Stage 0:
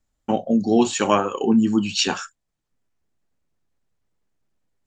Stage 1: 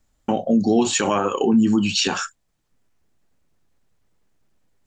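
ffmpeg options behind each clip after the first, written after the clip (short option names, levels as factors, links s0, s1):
-filter_complex "[0:a]asplit=2[s0][s1];[s1]acompressor=threshold=0.0398:ratio=6,volume=0.794[s2];[s0][s2]amix=inputs=2:normalize=0,alimiter=limit=0.237:level=0:latency=1:release=55,volume=1.41"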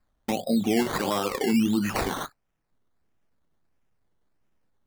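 -af "acrusher=samples=14:mix=1:aa=0.000001:lfo=1:lforange=8.4:lforate=1.5,volume=0.501"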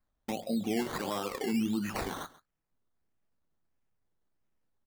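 -af "aecho=1:1:135:0.112,volume=0.398"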